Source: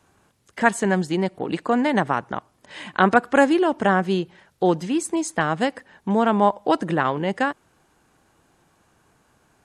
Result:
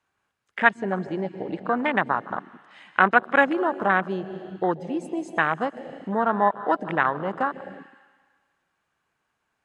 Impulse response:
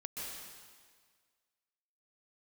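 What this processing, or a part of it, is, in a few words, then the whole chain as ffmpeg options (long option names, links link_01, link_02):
ducked reverb: -filter_complex "[0:a]asettb=1/sr,asplit=3[link_01][link_02][link_03];[link_01]atrim=end=0.644[link_04];[link_02]atrim=start=0.64:end=1.77,asetpts=PTS-STARTPTS,afade=type=in:duration=0.004:curve=qsin,afade=type=out:start_time=1.126:duration=0.004:curve=qsin,lowpass=5700[link_05];[link_03]atrim=start=1.766[link_06];[link_04][link_05]acrossfade=duration=0.004:curve1=hsin:curve2=qsin[link_07];[link_07][link_06]acrossfade=duration=0.004:curve1=qsin:curve2=hsin,asplit=3[link_08][link_09][link_10];[1:a]atrim=start_sample=2205[link_11];[link_09][link_11]afir=irnorm=-1:irlink=0[link_12];[link_10]apad=whole_len=425564[link_13];[link_12][link_13]sidechaincompress=threshold=-22dB:ratio=20:attack=12:release=547,volume=-1dB[link_14];[link_08][link_14]amix=inputs=2:normalize=0,afwtdn=0.0794,equalizer=frequency=2000:width_type=o:width=2.9:gain=12.5,volume=-10dB"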